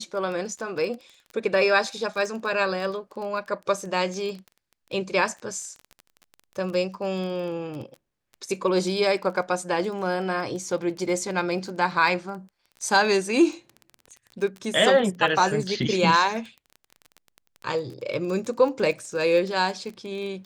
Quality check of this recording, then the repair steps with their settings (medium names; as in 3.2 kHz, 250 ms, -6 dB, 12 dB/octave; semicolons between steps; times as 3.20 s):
crackle 20 per s -32 dBFS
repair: de-click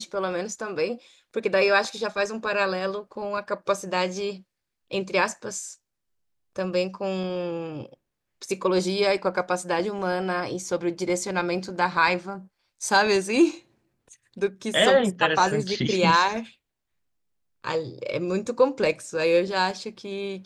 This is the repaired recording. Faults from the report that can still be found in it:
nothing left